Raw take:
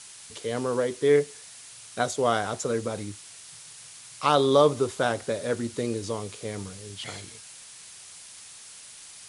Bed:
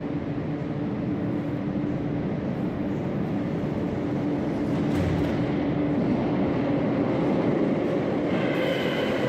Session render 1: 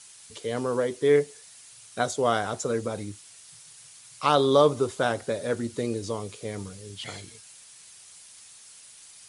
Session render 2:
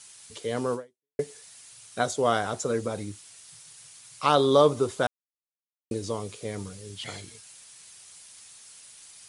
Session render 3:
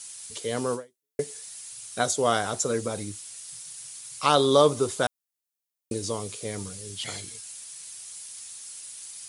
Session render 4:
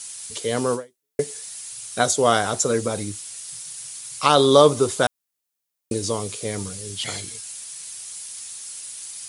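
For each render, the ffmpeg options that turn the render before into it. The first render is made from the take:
-af "afftdn=nr=6:nf=-47"
-filter_complex "[0:a]asplit=4[s0][s1][s2][s3];[s0]atrim=end=1.19,asetpts=PTS-STARTPTS,afade=t=out:st=0.74:d=0.45:c=exp[s4];[s1]atrim=start=1.19:end=5.07,asetpts=PTS-STARTPTS,afade=t=in:d=0.004:c=hsin,afade=t=out:st=3.876:d=0.004:c=hsin[s5];[s2]atrim=start=5.07:end=5.91,asetpts=PTS-STARTPTS,volume=0[s6];[s3]atrim=start=5.91,asetpts=PTS-STARTPTS,afade=t=in:d=0.004:c=hsin[s7];[s4][s5][s6][s7]concat=n=4:v=0:a=1"
-af "highshelf=f=4900:g=11"
-af "volume=1.88,alimiter=limit=0.708:level=0:latency=1"

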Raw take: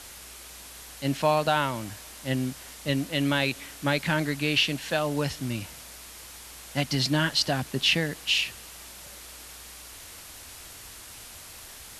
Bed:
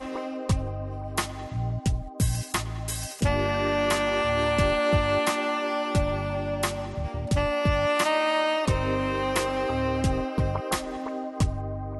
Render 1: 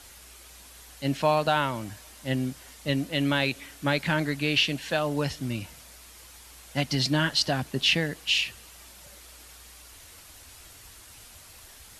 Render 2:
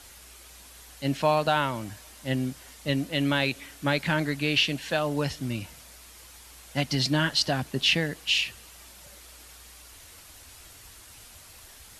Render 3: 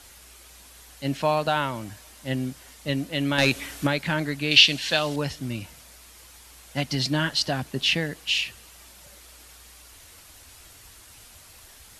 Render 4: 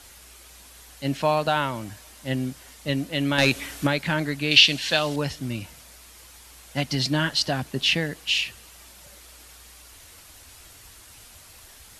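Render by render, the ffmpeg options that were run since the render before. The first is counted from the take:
-af "afftdn=nr=6:nf=-45"
-af anull
-filter_complex "[0:a]asettb=1/sr,asplit=3[s0][s1][s2];[s0]atrim=end=3.384[s3];[s1]atrim=start=3.38:end=3.87,asetpts=PTS-STARTPTS,afade=t=in:d=0.004:c=qsin,afade=t=out:st=0.486:d=0.004:c=qsin,aeval=exprs='0.282*sin(PI/2*1.58*val(0)/0.282)':c=same[s4];[s2]atrim=start=3.866[s5];[s3][s4]acrossfade=d=0.004:c1=hsin:c2=qsin[s6];[s6][s5]acrossfade=d=0.004:c1=qsin:c2=hsin,asettb=1/sr,asplit=3[s7][s8][s9];[s7]atrim=end=4.514[s10];[s8]atrim=start=4.51:end=5.16,asetpts=PTS-STARTPTS,afade=t=in:d=0.004:c=qsin,afade=t=out:st=0.646:d=0.004:c=qsin,equalizer=f=4200:t=o:w=1.8:g=12[s11];[s9]atrim=start=5.156[s12];[s10][s11]acrossfade=d=0.004:c1=hsin:c2=qsin[s13];[s13][s12]acrossfade=d=0.004:c1=qsin:c2=hsin"
-af "volume=1.12,alimiter=limit=0.794:level=0:latency=1"

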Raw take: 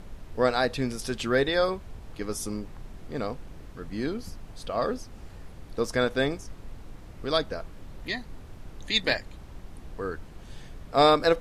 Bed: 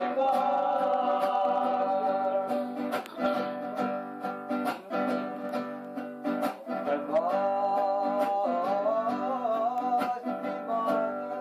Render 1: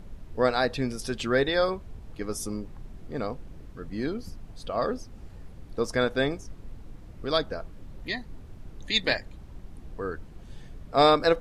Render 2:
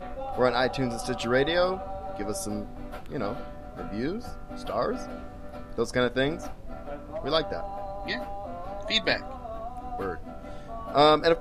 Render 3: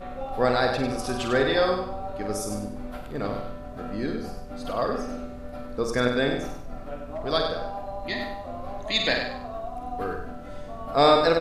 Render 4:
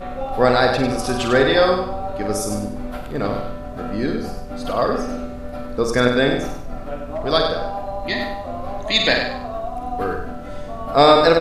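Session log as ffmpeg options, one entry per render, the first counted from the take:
-af "afftdn=nr=6:nf=-46"
-filter_complex "[1:a]volume=0.316[s0];[0:a][s0]amix=inputs=2:normalize=0"
-filter_complex "[0:a]asplit=2[s0][s1];[s1]adelay=49,volume=0.473[s2];[s0][s2]amix=inputs=2:normalize=0,asplit=2[s3][s4];[s4]aecho=0:1:97|194|291|388:0.473|0.142|0.0426|0.0128[s5];[s3][s5]amix=inputs=2:normalize=0"
-af "volume=2.24,alimiter=limit=0.891:level=0:latency=1"

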